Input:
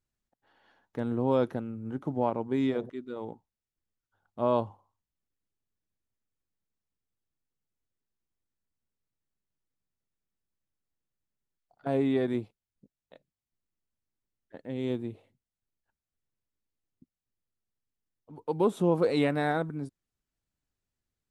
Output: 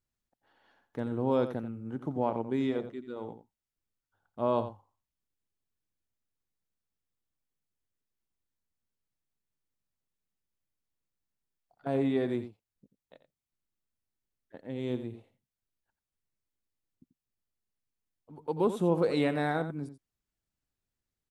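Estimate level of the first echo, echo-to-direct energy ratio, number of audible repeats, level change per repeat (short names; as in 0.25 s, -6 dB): -11.5 dB, -11.5 dB, 1, no steady repeat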